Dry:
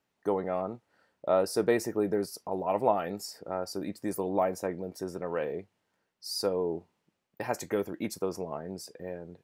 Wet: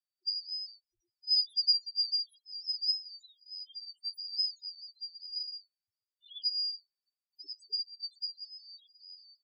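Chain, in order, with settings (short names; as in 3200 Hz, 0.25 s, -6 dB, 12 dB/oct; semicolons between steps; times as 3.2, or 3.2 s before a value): four-band scrambler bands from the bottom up 2341; loudest bins only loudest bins 2; upward expander 1.5:1, over -43 dBFS; gain +2.5 dB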